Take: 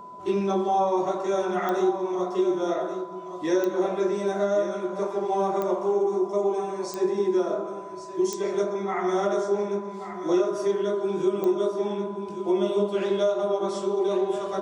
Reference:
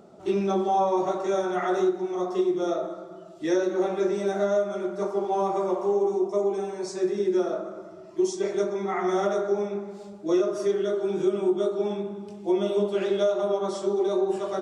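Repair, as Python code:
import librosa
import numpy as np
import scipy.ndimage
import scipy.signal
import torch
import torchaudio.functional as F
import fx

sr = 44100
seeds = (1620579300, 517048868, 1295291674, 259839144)

y = fx.fix_declick_ar(x, sr, threshold=10.0)
y = fx.notch(y, sr, hz=1000.0, q=30.0)
y = fx.fix_echo_inverse(y, sr, delay_ms=1132, level_db=-10.5)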